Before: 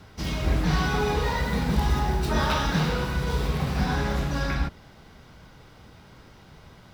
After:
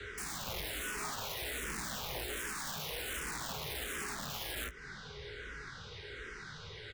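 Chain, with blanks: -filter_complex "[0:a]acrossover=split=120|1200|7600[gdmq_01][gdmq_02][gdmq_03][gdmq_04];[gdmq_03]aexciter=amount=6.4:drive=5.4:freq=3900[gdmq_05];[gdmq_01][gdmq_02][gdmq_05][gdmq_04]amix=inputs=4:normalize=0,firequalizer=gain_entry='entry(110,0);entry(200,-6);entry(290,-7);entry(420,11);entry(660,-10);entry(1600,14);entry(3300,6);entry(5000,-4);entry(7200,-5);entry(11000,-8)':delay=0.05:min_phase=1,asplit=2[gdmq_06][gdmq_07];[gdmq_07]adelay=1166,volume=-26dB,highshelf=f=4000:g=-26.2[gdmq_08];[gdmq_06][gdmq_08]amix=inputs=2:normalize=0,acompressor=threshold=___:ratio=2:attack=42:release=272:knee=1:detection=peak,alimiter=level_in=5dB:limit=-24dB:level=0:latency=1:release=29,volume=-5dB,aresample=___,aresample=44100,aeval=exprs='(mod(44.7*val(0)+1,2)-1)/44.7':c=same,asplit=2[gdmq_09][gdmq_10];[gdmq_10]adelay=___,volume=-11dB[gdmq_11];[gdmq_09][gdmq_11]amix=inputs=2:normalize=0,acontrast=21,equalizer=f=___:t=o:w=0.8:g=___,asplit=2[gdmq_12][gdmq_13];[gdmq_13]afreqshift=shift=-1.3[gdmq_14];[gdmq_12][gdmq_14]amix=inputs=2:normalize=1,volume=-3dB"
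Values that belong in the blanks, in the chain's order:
-44dB, 22050, 19, 4900, -4.5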